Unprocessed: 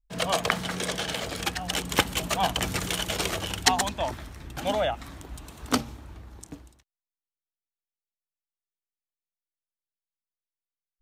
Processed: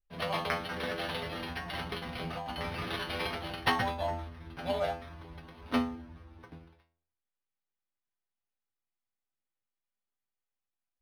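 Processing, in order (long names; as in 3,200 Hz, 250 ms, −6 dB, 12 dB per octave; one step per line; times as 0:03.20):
0:00.71–0:02.90: compressor whose output falls as the input rises −29 dBFS, ratio −0.5
stiff-string resonator 81 Hz, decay 0.59 s, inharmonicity 0.002
linearly interpolated sample-rate reduction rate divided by 6×
level +7 dB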